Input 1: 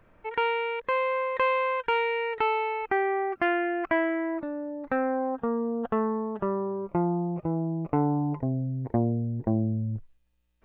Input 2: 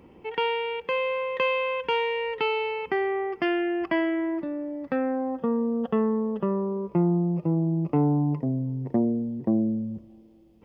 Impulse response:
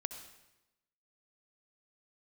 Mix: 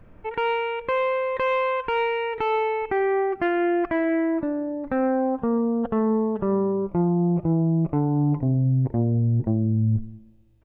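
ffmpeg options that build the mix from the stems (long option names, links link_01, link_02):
-filter_complex "[0:a]lowshelf=frequency=400:gain=11.5,volume=-2.5dB,asplit=2[link_01][link_02];[link_02]volume=-5dB[link_03];[1:a]bandreject=frequency=55.28:width_type=h:width=4,bandreject=frequency=110.56:width_type=h:width=4,bandreject=frequency=165.84:width_type=h:width=4,bandreject=frequency=221.12:width_type=h:width=4,asoftclip=type=tanh:threshold=-21.5dB,adelay=1.8,volume=-16dB,asplit=2[link_04][link_05];[link_05]volume=-6dB[link_06];[2:a]atrim=start_sample=2205[link_07];[link_03][link_06]amix=inputs=2:normalize=0[link_08];[link_08][link_07]afir=irnorm=-1:irlink=0[link_09];[link_01][link_04][link_09]amix=inputs=3:normalize=0,alimiter=limit=-14.5dB:level=0:latency=1:release=122"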